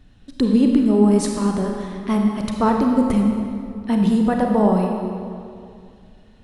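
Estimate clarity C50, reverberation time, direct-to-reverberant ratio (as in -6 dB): 2.5 dB, 2.4 s, 1.5 dB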